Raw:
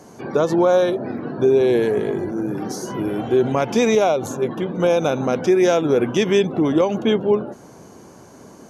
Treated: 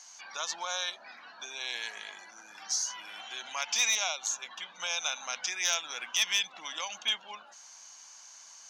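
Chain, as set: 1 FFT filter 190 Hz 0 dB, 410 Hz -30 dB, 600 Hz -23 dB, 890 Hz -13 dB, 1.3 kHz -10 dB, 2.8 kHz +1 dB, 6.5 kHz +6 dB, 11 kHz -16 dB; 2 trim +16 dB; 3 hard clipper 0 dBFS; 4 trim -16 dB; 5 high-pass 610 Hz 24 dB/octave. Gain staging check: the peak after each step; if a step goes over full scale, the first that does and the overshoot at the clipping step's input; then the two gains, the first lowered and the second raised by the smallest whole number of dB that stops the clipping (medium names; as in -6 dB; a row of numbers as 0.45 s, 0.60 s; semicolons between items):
-10.0 dBFS, +6.0 dBFS, 0.0 dBFS, -16.0 dBFS, -13.5 dBFS; step 2, 6.0 dB; step 2 +10 dB, step 4 -10 dB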